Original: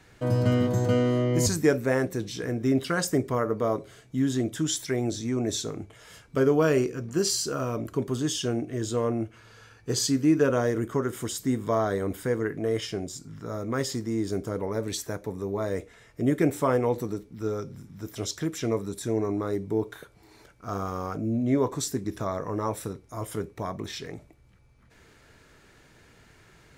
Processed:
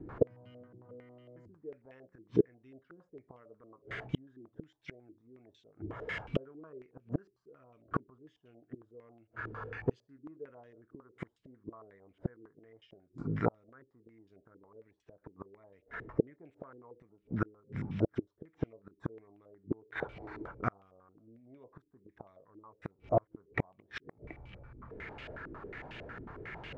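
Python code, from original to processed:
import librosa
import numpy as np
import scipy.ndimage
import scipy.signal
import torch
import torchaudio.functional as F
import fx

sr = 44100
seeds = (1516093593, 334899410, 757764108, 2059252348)

y = fx.gate_flip(x, sr, shuts_db=-25.0, range_db=-41)
y = fx.filter_held_lowpass(y, sr, hz=11.0, low_hz=330.0, high_hz=2800.0)
y = F.gain(torch.from_numpy(y), 7.0).numpy()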